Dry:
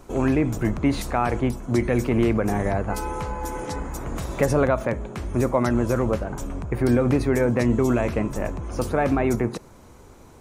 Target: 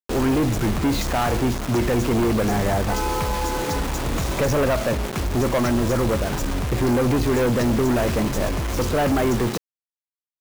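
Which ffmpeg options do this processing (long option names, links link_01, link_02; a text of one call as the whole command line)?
ffmpeg -i in.wav -af "aresample=16000,aeval=exprs='sgn(val(0))*max(abs(val(0))-0.00224,0)':channel_layout=same,aresample=44100,acrusher=bits=5:mix=0:aa=0.000001,asoftclip=type=tanh:threshold=-24.5dB,volume=8dB" out.wav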